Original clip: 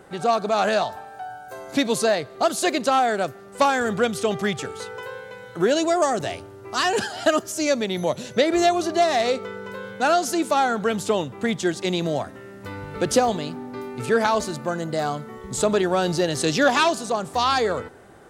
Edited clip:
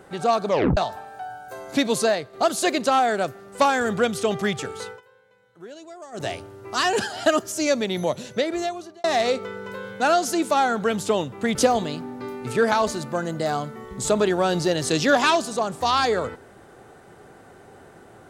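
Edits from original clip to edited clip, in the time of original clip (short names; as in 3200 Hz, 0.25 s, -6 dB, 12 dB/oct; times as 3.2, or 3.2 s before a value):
0.48 tape stop 0.29 s
2.06–2.33 fade out, to -6.5 dB
4.88–6.25 dip -21 dB, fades 0.13 s
8.01–9.04 fade out
11.55–13.08 cut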